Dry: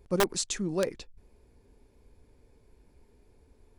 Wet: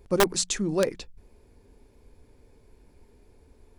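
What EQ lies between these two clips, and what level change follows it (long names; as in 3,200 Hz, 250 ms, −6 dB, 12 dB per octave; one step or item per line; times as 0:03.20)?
mains-hum notches 60/120/180 Hz
+4.5 dB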